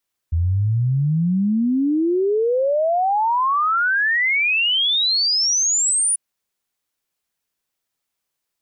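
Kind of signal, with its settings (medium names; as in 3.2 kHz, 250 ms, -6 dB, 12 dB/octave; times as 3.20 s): log sweep 80 Hz -> 9.8 kHz 5.84 s -15.5 dBFS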